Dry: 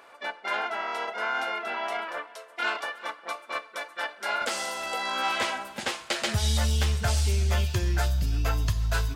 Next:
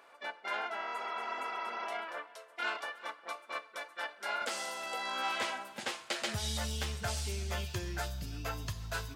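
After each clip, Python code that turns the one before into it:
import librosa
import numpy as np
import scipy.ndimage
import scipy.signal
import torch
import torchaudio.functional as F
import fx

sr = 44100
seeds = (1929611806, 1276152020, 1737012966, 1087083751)

y = scipy.signal.sosfilt(scipy.signal.butter(2, 71.0, 'highpass', fs=sr, output='sos'), x)
y = fx.spec_repair(y, sr, seeds[0], start_s=0.96, length_s=0.88, low_hz=310.0, high_hz=6400.0, source='before')
y = fx.low_shelf(y, sr, hz=120.0, db=-6.0)
y = y * librosa.db_to_amplitude(-7.0)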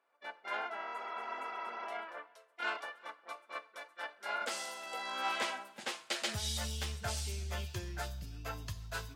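y = fx.band_widen(x, sr, depth_pct=70)
y = y * librosa.db_to_amplitude(-2.5)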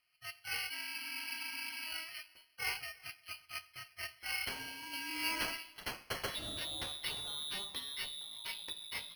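y = fx.freq_invert(x, sr, carrier_hz=3600)
y = np.repeat(scipy.signal.resample_poly(y, 1, 6), 6)[:len(y)]
y = y * librosa.db_to_amplitude(-1.0)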